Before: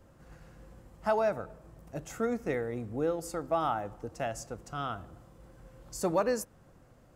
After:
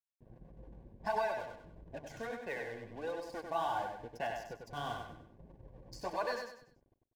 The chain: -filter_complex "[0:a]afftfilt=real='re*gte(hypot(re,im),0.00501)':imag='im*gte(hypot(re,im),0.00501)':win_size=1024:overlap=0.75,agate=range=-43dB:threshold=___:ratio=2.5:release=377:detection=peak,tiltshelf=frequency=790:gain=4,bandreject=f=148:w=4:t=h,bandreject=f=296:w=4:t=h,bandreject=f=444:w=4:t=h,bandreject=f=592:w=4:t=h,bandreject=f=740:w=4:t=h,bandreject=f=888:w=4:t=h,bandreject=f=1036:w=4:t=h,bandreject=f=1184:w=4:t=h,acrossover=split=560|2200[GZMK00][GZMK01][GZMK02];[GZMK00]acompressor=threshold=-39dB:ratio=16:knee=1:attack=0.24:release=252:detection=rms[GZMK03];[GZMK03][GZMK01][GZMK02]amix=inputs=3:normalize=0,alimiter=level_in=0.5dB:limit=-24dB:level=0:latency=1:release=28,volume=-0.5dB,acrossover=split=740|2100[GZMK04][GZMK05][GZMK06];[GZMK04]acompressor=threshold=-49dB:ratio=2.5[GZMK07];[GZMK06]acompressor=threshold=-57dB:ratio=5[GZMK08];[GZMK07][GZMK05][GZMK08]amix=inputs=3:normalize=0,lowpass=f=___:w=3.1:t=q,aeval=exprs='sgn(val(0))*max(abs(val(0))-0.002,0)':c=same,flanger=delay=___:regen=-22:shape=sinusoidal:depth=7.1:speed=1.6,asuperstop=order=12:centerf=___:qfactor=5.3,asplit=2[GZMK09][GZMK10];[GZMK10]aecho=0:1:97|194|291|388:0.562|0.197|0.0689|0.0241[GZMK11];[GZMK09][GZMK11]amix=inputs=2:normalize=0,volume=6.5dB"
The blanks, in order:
-53dB, 4700, 1.9, 1300